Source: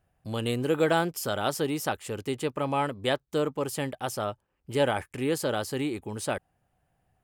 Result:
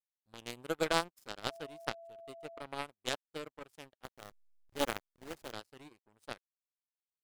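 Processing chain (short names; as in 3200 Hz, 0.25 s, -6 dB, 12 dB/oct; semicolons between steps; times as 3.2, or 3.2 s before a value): 4.04–5.53 level-crossing sampler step -26.5 dBFS; power-law curve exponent 3; 1.42–2.61 whine 670 Hz -51 dBFS; gain +2 dB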